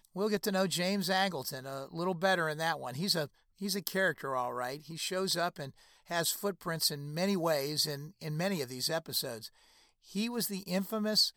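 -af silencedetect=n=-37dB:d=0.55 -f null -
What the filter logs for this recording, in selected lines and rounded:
silence_start: 9.46
silence_end: 10.15 | silence_duration: 0.69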